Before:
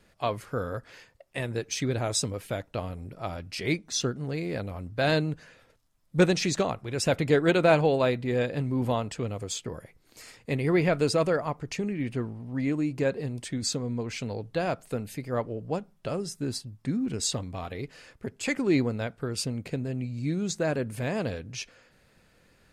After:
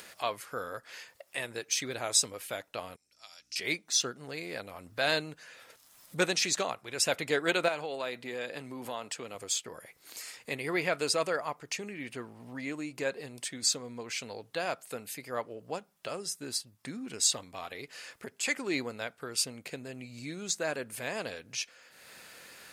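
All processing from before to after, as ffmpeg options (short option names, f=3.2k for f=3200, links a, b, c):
-filter_complex "[0:a]asettb=1/sr,asplit=3[a][b][c];[a]atrim=end=2.964[d];[b]atrim=start=2.96:end=3.56,asetpts=PTS-STARTPTS,afade=t=in:d=0.004:c=qsin,afade=t=out:st=0.596:d=0.004:c=qsin,bandpass=f=5.8k:t=q:w=4.7,aeval=exprs='val(0)+0.000178*(sin(2*PI*60*n/s)+sin(2*PI*2*60*n/s)/2+sin(2*PI*3*60*n/s)/3+sin(2*PI*4*60*n/s)/4+sin(2*PI*5*60*n/s)/5)':c=same[e];[c]atrim=start=3.556[f];[d][e]acrossfade=d=0.004:c1=hsin:c2=qsin[g];[g][f]acrossfade=d=0.004:c1=qsin:c2=hsin,asettb=1/sr,asplit=3[h][i][j];[h]atrim=end=7.684[k];[i]atrim=start=7.68:end=9.35,asetpts=PTS-STARTPTS,afade=t=in:d=0.004:c=qsin,afade=t=out:st=1.666:d=0.004:c=qsin,highpass=140,acompressor=threshold=-26dB:ratio=4:attack=3.2:release=140:knee=1:detection=peak[l];[j]atrim=start=9.346[m];[k][l]acrossfade=d=0.004:c1=hsin:c2=qsin[n];[n][m]acrossfade=d=0.004:c1=qsin:c2=hsin,highpass=f=1.1k:p=1,highshelf=f=9k:g=7.5,acompressor=mode=upward:threshold=-39dB:ratio=2.5,volume=1dB"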